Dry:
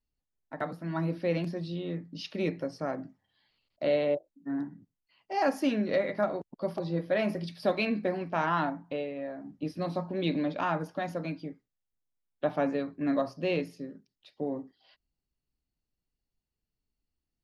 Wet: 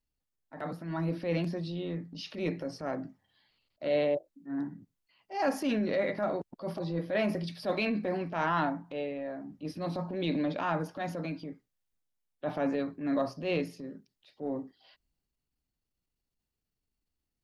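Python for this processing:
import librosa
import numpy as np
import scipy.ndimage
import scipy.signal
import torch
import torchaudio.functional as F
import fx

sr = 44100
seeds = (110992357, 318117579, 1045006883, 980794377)

y = fx.transient(x, sr, attack_db=-8, sustain_db=3)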